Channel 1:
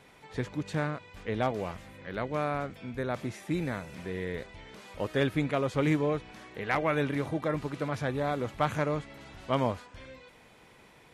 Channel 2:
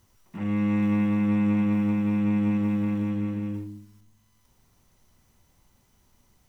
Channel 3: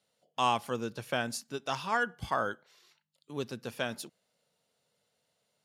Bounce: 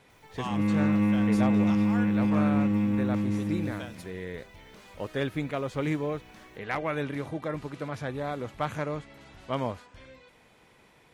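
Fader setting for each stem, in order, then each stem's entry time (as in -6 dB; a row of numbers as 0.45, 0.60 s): -2.5, -0.5, -9.0 dB; 0.00, 0.10, 0.00 s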